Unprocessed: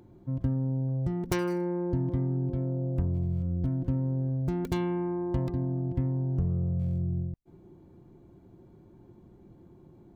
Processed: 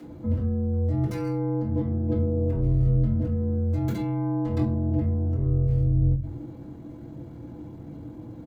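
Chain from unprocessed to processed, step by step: HPF 160 Hz 12 dB/oct; negative-ratio compressor -37 dBFS, ratio -1; shoebox room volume 33 m³, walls mixed, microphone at 2.2 m; tempo 1.2×; frequency shift -44 Hz; gain -2 dB

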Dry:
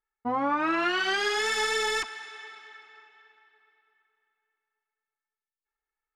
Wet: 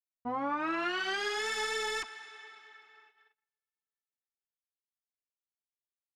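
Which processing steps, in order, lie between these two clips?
gate -56 dBFS, range -30 dB; gain -6.5 dB

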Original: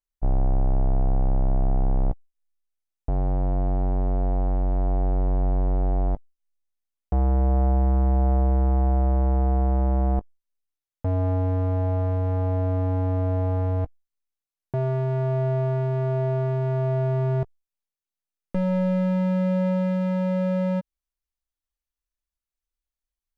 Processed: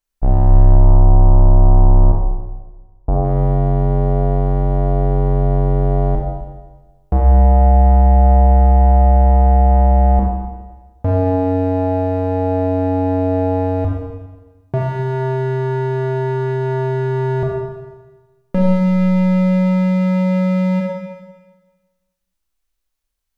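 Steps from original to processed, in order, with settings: 0.71–3.25 resonant high shelf 1600 Hz -12.5 dB, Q 1.5; Schroeder reverb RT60 1.3 s, combs from 28 ms, DRR -1 dB; gain +8 dB

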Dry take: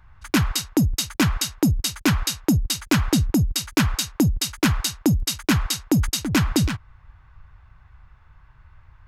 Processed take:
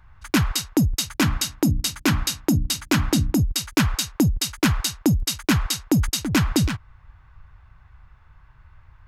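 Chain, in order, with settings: 1.04–3.4 notches 60/120/180/240/300 Hz

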